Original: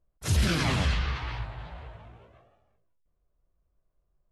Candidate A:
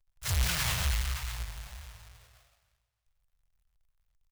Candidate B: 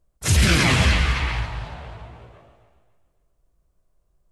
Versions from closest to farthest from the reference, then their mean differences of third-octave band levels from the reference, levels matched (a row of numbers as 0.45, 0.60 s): B, A; 2.5, 10.0 dB